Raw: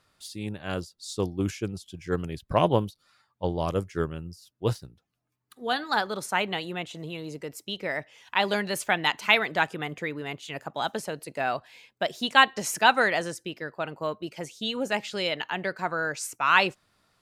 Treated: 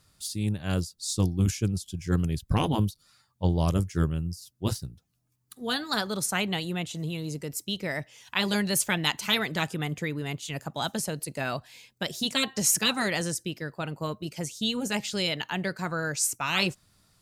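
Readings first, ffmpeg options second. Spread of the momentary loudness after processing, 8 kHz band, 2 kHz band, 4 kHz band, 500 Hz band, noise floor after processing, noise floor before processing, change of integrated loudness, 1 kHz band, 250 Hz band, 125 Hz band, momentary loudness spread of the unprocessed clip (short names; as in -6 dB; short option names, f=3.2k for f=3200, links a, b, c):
9 LU, +8.5 dB, -5.5 dB, +1.0 dB, -4.5 dB, -71 dBFS, -74 dBFS, -1.0 dB, -8.0 dB, +3.5 dB, +6.5 dB, 15 LU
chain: -af "afftfilt=real='re*lt(hypot(re,im),0.398)':imag='im*lt(hypot(re,im),0.398)':win_size=1024:overlap=0.75,bass=f=250:g=12,treble=f=4k:g=12,volume=-2.5dB"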